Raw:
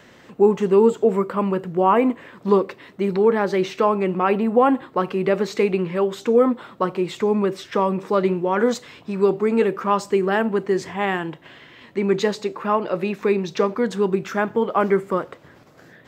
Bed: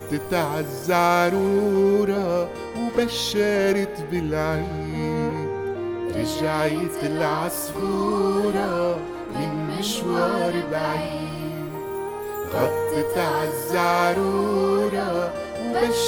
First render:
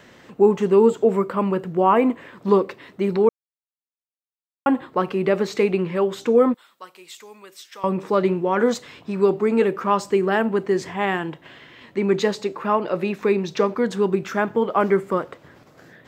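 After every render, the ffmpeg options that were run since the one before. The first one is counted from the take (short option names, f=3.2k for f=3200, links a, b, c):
-filter_complex "[0:a]asettb=1/sr,asplit=3[a][b][c];[a]atrim=end=6.544[d];[b]atrim=start=6.54:end=7.84,asetpts=PTS-STARTPTS,afade=t=in:d=0.004:c=qsin,afade=t=out:st=1.296:d=0.004:c=qsin,aderivative[e];[c]atrim=start=7.836[f];[d][e]acrossfade=d=0.004:c1=hsin:c2=qsin[g];[g][f]acrossfade=d=0.004:c1=qsin:c2=hsin,asplit=3[h][i][j];[h]atrim=end=3.29,asetpts=PTS-STARTPTS,afade=t=out:st=3.286:d=0.004:c=hsin[k];[i]atrim=start=3.29:end=4.66,asetpts=PTS-STARTPTS,volume=0[l];[j]atrim=start=4.66,asetpts=PTS-STARTPTS,afade=t=in:d=0.004:c=hsin[m];[k][l][m]concat=n=3:v=0:a=1"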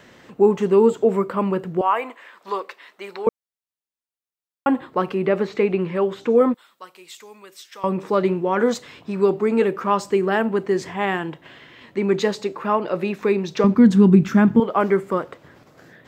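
-filter_complex "[0:a]asettb=1/sr,asplit=3[a][b][c];[a]atrim=end=1.814[d];[b]atrim=start=1.81:end=3.27,asetpts=PTS-STARTPTS,afade=t=in:d=0.004:c=qsin,afade=t=out:st=1.456:d=0.004:c=qsin,highpass=830[e];[c]atrim=start=3.266[f];[d][e]acrossfade=d=0.004:c1=hsin:c2=qsin[g];[g][f]acrossfade=d=0.004:c1=qsin:c2=hsin,asettb=1/sr,asplit=3[h][i][j];[h]atrim=end=5.144[k];[i]atrim=start=5.14:end=6.41,asetpts=PTS-STARTPTS,afade=t=in:d=0.004:c=qsin,afade=t=out:st=1.266:d=0.004:c=qsin,acrossover=split=3400[l][m];[m]acompressor=threshold=-53dB:ratio=4:attack=1:release=60[n];[l][n]amix=inputs=2:normalize=0[o];[j]atrim=start=6.406[p];[k][o]acrossfade=d=0.004:c1=hsin:c2=qsin[q];[q][p]acrossfade=d=0.004:c1=qsin:c2=hsin,asettb=1/sr,asplit=3[r][s][t];[r]atrim=end=13.644[u];[s]atrim=start=13.64:end=14.6,asetpts=PTS-STARTPTS,afade=t=in:d=0.004:c=qsin,afade=t=out:st=0.956:d=0.004:c=qsin,lowshelf=f=330:t=q:w=1.5:g=11.5[v];[t]atrim=start=14.596[w];[u][v]acrossfade=d=0.004:c1=hsin:c2=qsin[x];[x][w]acrossfade=d=0.004:c1=qsin:c2=hsin"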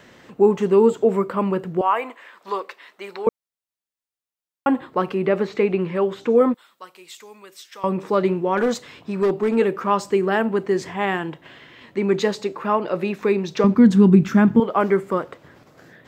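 -filter_complex "[0:a]asettb=1/sr,asplit=3[a][b][c];[a]atrim=end=8.574[d];[b]atrim=start=8.57:end=9.56,asetpts=PTS-STARTPTS,afade=t=in:d=0.004:c=qsin,afade=t=out:st=0.986:d=0.004:c=qsin,asoftclip=type=hard:threshold=-14.5dB[e];[c]atrim=start=9.556[f];[d][e]acrossfade=d=0.004:c1=hsin:c2=qsin[g];[g][f]acrossfade=d=0.004:c1=qsin:c2=hsin"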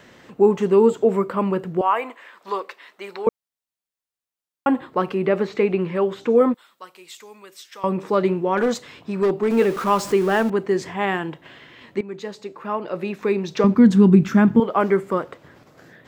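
-filter_complex "[0:a]asettb=1/sr,asplit=3[a][b][c];[a]atrim=end=9.504[d];[b]atrim=start=9.5:end=10.5,asetpts=PTS-STARTPTS,afade=t=in:d=0.004:c=qsin,afade=t=out:st=0.996:d=0.004:c=qsin,aeval=exprs='val(0)+0.5*0.0335*sgn(val(0))':c=same[e];[c]atrim=start=10.496[f];[d][e]acrossfade=d=0.004:c1=hsin:c2=qsin[g];[g][f]acrossfade=d=0.004:c1=qsin:c2=hsin,asplit=2[h][i];[h]atrim=end=12.01,asetpts=PTS-STARTPTS,afade=t=out:st=12.006:d=0.004:c=hsin:silence=0.141254[j];[i]atrim=start=12.01,asetpts=PTS-STARTPTS,afade=t=in:d=1.6:silence=0.141254[k];[j][k]concat=n=2:v=0:a=1"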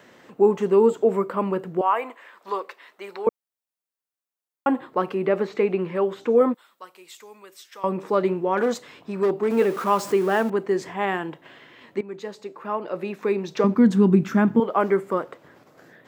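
-af "highpass=f=270:p=1,equalizer=f=4k:w=0.42:g=-4.5"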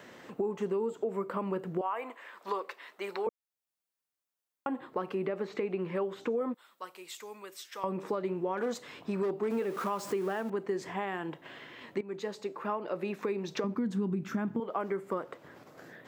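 -af "alimiter=limit=-18dB:level=0:latency=1:release=492,acompressor=threshold=-31dB:ratio=2.5"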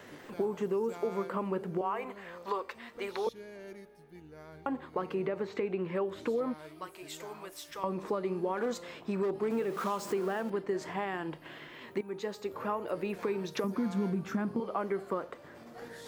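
-filter_complex "[1:a]volume=-27dB[a];[0:a][a]amix=inputs=2:normalize=0"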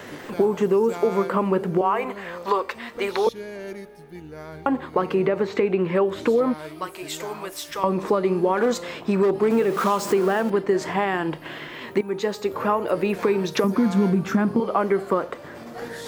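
-af "volume=12dB"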